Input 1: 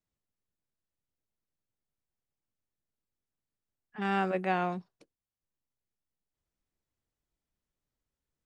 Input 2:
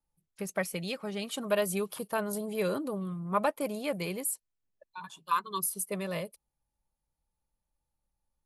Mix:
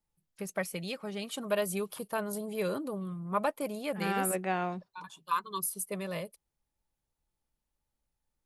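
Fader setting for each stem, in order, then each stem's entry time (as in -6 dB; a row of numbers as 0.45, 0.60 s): -2.0, -2.0 dB; 0.00, 0.00 s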